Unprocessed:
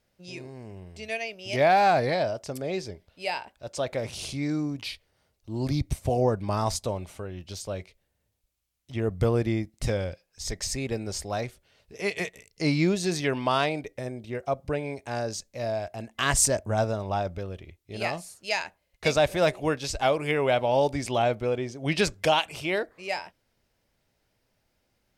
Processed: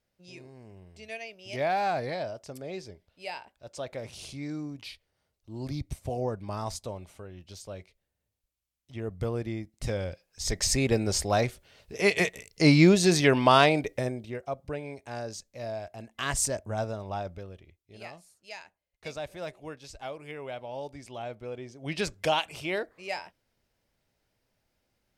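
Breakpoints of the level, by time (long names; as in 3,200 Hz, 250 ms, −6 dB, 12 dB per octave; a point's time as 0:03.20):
0:09.60 −7.5 dB
0:10.73 +5.5 dB
0:13.99 +5.5 dB
0:14.46 −6 dB
0:17.30 −6 dB
0:18.15 −15 dB
0:21.12 −15 dB
0:22.31 −3.5 dB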